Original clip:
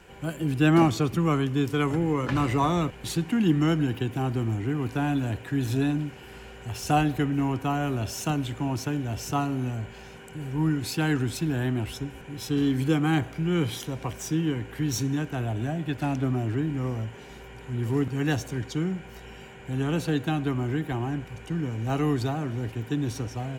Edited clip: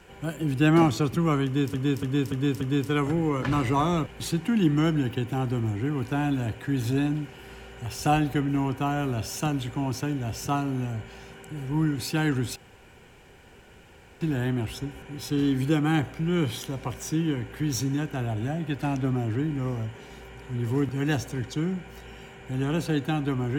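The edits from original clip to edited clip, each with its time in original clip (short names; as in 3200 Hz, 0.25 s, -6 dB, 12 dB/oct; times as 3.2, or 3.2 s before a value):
1.45–1.74 loop, 5 plays
11.4 insert room tone 1.65 s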